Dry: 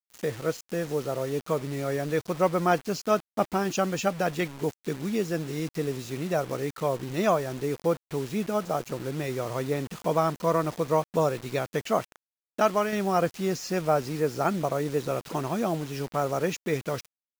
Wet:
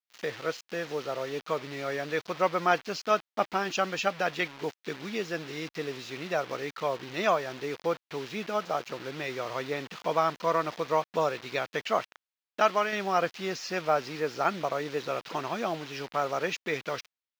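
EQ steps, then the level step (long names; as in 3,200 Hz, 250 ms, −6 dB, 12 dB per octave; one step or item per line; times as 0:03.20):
high-frequency loss of the air 260 metres
spectral tilt +4.5 dB per octave
+1.5 dB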